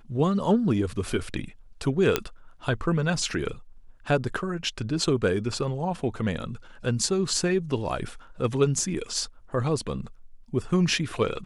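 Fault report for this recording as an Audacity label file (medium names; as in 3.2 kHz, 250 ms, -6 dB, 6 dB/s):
2.160000	2.160000	pop -6 dBFS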